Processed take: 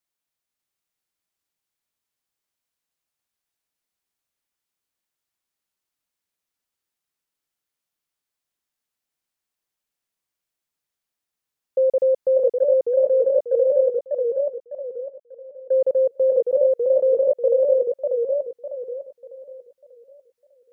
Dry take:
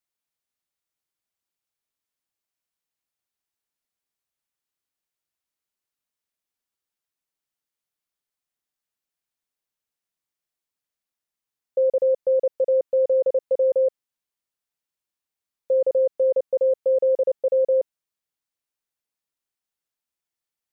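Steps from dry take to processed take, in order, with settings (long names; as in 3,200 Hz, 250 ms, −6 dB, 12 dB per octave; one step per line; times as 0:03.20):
0:12.52–0:16.02: downward expander −21 dBFS
feedback echo with a swinging delay time 597 ms, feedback 36%, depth 180 cents, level −4 dB
level +1.5 dB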